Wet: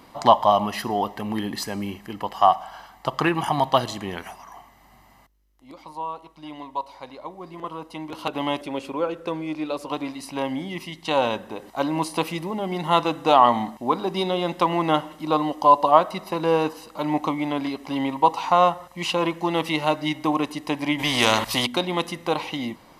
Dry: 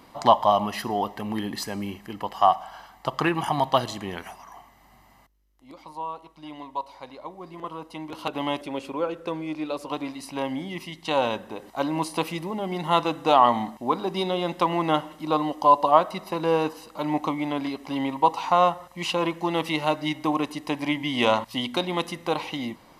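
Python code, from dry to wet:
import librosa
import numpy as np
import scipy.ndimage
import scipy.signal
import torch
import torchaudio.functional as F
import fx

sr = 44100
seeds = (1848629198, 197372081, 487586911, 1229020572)

y = fx.spectral_comp(x, sr, ratio=2.0, at=(20.98, 21.65), fade=0.02)
y = y * librosa.db_to_amplitude(2.0)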